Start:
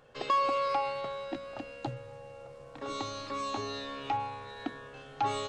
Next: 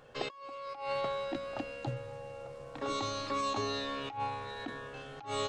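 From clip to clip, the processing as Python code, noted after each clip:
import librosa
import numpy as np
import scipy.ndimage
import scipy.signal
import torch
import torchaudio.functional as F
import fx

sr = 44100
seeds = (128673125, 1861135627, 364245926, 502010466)

y = fx.over_compress(x, sr, threshold_db=-35.0, ratio=-0.5)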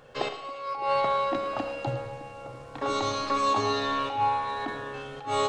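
y = fx.echo_split(x, sr, split_hz=570.0, low_ms=609, high_ms=110, feedback_pct=52, wet_db=-14)
y = fx.dynamic_eq(y, sr, hz=930.0, q=0.79, threshold_db=-47.0, ratio=4.0, max_db=5)
y = fx.rev_schroeder(y, sr, rt60_s=0.91, comb_ms=28, drr_db=8.0)
y = F.gain(torch.from_numpy(y), 4.0).numpy()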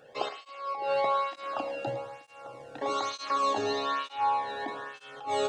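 y = fx.flanger_cancel(x, sr, hz=1.1, depth_ms=1.0)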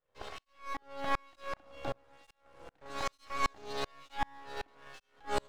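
y = np.maximum(x, 0.0)
y = fx.tremolo_decay(y, sr, direction='swelling', hz=2.6, depth_db=36)
y = F.gain(torch.from_numpy(y), 4.5).numpy()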